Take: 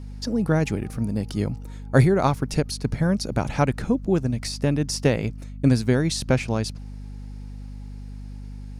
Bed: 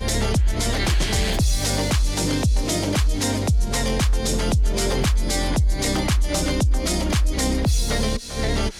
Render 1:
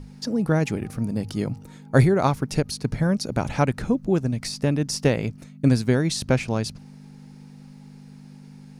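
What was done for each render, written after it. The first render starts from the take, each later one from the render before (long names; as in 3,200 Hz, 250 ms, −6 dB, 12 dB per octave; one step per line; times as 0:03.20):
mains-hum notches 50/100 Hz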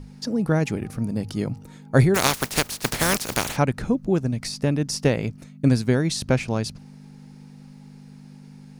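0:02.14–0:03.55: compressing power law on the bin magnitudes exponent 0.32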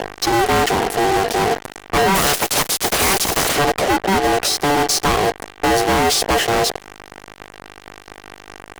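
ring modulation 580 Hz
fuzz pedal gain 42 dB, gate −39 dBFS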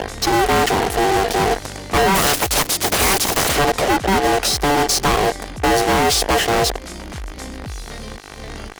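mix in bed −11 dB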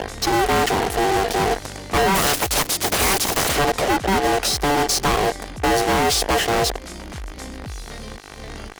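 level −2.5 dB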